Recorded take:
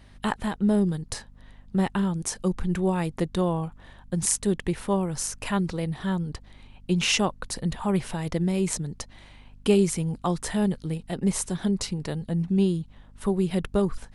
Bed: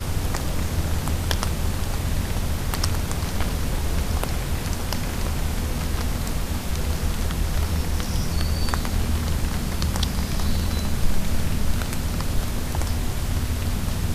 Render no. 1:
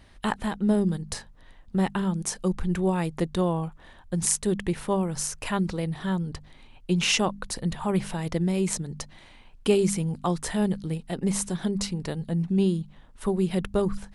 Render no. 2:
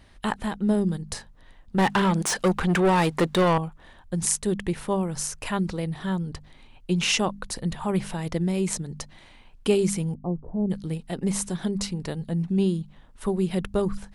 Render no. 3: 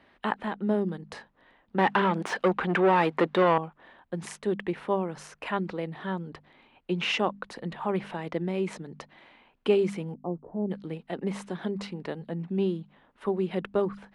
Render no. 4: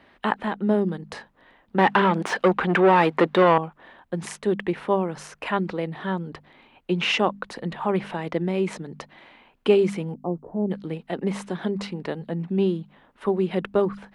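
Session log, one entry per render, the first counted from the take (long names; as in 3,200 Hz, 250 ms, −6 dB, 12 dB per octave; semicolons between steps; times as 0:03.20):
hum removal 50 Hz, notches 5
0:01.78–0:03.58: mid-hump overdrive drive 24 dB, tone 3,700 Hz, clips at −12 dBFS; 0:10.14–0:10.70: Gaussian smoothing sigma 13 samples
high-pass filter 71 Hz 6 dB per octave; three-way crossover with the lows and the highs turned down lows −16 dB, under 210 Hz, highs −23 dB, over 3,300 Hz
level +5 dB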